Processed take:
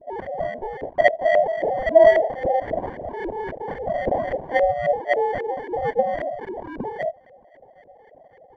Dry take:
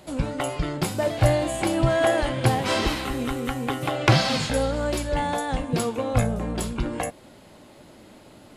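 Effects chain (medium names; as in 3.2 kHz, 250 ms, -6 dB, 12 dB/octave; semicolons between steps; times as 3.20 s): formants replaced by sine waves; sample-rate reducer 1.3 kHz, jitter 0%; LFO low-pass saw up 3.7 Hz 490–1900 Hz; trim -1 dB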